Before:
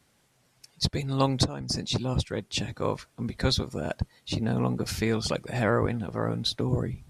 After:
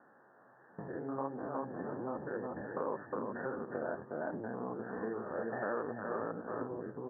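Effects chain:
spectrum averaged block by block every 100 ms
in parallel at 0 dB: brickwall limiter −24 dBFS, peak gain reduction 11.5 dB
on the sum: single-tap delay 360 ms −6.5 dB
flanger 1.4 Hz, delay 3.2 ms, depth 8.7 ms, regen −31%
Chebyshev low-pass filter 1,800 Hz, order 10
downward compressor 12 to 1, threshold −39 dBFS, peak gain reduction 19 dB
high-pass filter 360 Hz 12 dB per octave
0:01.84–0:02.61: multiband upward and downward compressor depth 40%
level +9 dB

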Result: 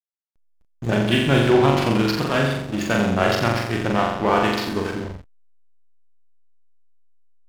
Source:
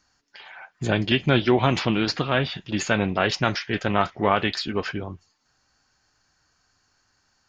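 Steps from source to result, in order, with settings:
flutter between parallel walls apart 7.4 metres, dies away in 1.1 s
slack as between gear wheels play −22 dBFS

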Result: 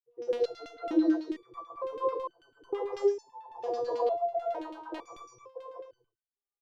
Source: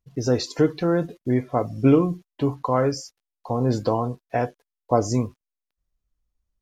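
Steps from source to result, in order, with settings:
hard clipping −9.5 dBFS, distortion −23 dB
comb filter 5.9 ms, depth 85%
on a send: single-tap delay 635 ms −11.5 dB
on the sum: low-pass that shuts in the quiet parts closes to 1,000 Hz, open at −17 dBFS
flat-topped bell 2,100 Hz −10 dB 1.3 octaves
notch filter 630 Hz, Q 12
reverb whose tail is shaped and stops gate 240 ms rising, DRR −3.5 dB
healed spectral selection 0:04.47–0:05.04, 850–1,700 Hz
drawn EQ curve 110 Hz 0 dB, 220 Hz −28 dB, 350 Hz +10 dB
auto-filter band-pass saw down 9.1 Hz 220–3,200 Hz
step-sequenced resonator 2.2 Hz 240–1,500 Hz

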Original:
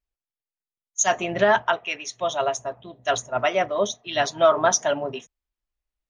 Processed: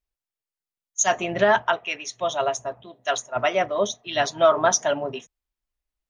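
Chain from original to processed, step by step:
0:02.84–0:03.35: high-pass filter 310 Hz → 750 Hz 6 dB per octave

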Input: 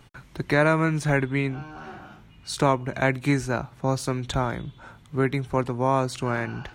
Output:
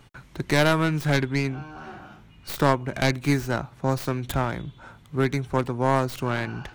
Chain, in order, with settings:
stylus tracing distortion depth 0.22 ms

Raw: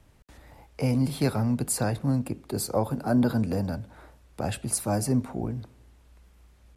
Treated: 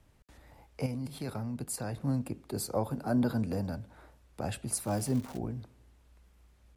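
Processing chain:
0:00.86–0:01.98: output level in coarse steps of 10 dB
0:04.85–0:05.37: surface crackle 540 per second −33 dBFS
level −5.5 dB

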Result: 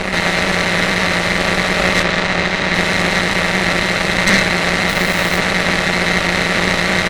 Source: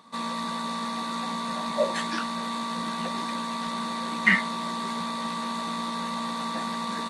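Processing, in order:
compressor on every frequency bin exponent 0.2
0:02.02–0:02.74: high-frequency loss of the air 79 metres
0:04.89–0:05.38: floating-point word with a short mantissa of 2 bits
low-shelf EQ 210 Hz +11.5 dB
ambience of single reflections 11 ms −5 dB, 32 ms −9.5 dB
harmonic generator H 5 −13 dB, 6 −7 dB, 7 −15 dB, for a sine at −0.5 dBFS
level −4 dB

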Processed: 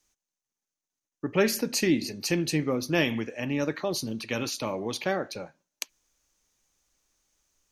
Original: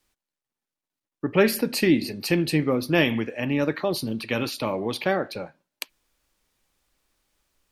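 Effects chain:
parametric band 6,300 Hz +14.5 dB 0.41 octaves
level −4.5 dB

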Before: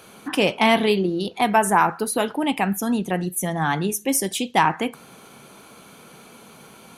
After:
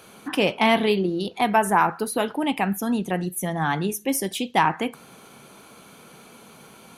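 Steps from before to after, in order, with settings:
dynamic equaliser 7,600 Hz, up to −6 dB, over −42 dBFS, Q 1.3
level −1.5 dB

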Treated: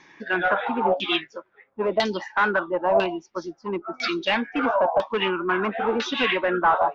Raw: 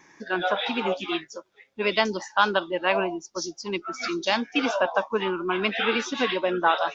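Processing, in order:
hard clipping −20 dBFS, distortion −10 dB
auto-filter low-pass saw down 1 Hz 690–4,200 Hz
level +1.5 dB

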